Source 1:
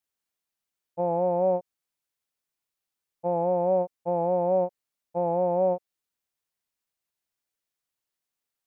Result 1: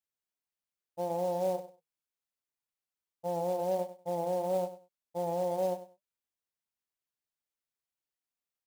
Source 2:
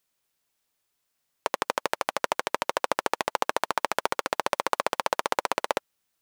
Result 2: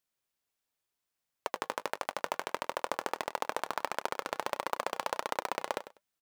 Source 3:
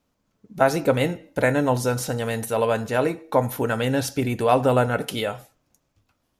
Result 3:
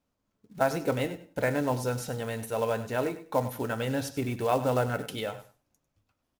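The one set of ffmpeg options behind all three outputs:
ffmpeg -i in.wav -af "highshelf=frequency=2800:gain=-2,flanger=delay=1.2:depth=2:regen=-81:speed=1.5:shape=sinusoidal,acrusher=bits=5:mode=log:mix=0:aa=0.000001,aecho=1:1:98|196:0.2|0.0359,volume=-3dB" out.wav

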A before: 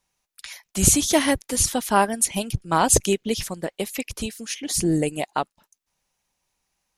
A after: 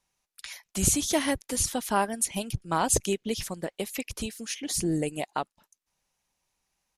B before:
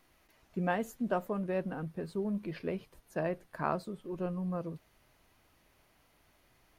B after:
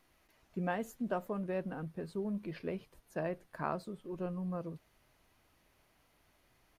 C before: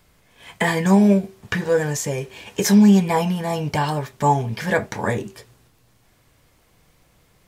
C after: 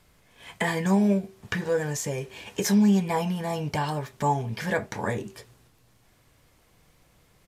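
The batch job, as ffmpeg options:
ffmpeg -i in.wav -filter_complex "[0:a]asplit=2[link_01][link_02];[link_02]acompressor=threshold=-28dB:ratio=6,volume=-0.5dB[link_03];[link_01][link_03]amix=inputs=2:normalize=0,aresample=32000,aresample=44100,volume=-8.5dB" out.wav

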